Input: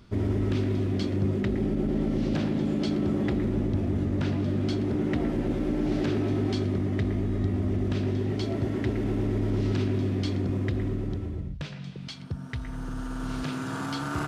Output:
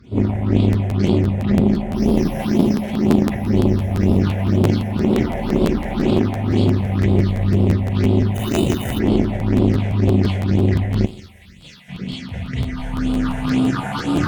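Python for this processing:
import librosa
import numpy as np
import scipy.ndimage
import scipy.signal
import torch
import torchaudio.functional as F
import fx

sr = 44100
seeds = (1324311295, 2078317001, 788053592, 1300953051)

p1 = fx.sample_sort(x, sr, block=8, at=(1.92, 2.78))
p2 = scipy.signal.sosfilt(scipy.signal.butter(4, 43.0, 'highpass', fs=sr, output='sos'), p1)
p3 = p2 + fx.echo_wet_highpass(p2, sr, ms=690, feedback_pct=80, hz=1700.0, wet_db=-7.5, dry=0)
p4 = 10.0 ** (-23.0 / 20.0) * np.tanh(p3 / 10.0 ** (-23.0 / 20.0))
p5 = fx.rev_schroeder(p4, sr, rt60_s=0.37, comb_ms=31, drr_db=-7.5)
p6 = fx.over_compress(p5, sr, threshold_db=-23.0, ratio=-0.5)
p7 = p5 + F.gain(torch.from_numpy(p6), -3.0).numpy()
p8 = fx.high_shelf(p7, sr, hz=4200.0, db=-8.0)
p9 = fx.sample_hold(p8, sr, seeds[0], rate_hz=3300.0, jitter_pct=0, at=(8.34, 8.98), fade=0.02)
p10 = fx.phaser_stages(p9, sr, stages=6, low_hz=310.0, high_hz=1700.0, hz=2.0, feedback_pct=25)
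p11 = fx.cheby_harmonics(p10, sr, harmonics=(3,), levels_db=(-16,), full_scale_db=-8.0)
p12 = fx.pre_emphasis(p11, sr, coefficient=0.9, at=(11.05, 11.88), fade=0.02)
p13 = fx.buffer_crackle(p12, sr, first_s=0.72, period_s=0.17, block=512, kind='repeat')
y = F.gain(torch.from_numpy(p13), 5.5).numpy()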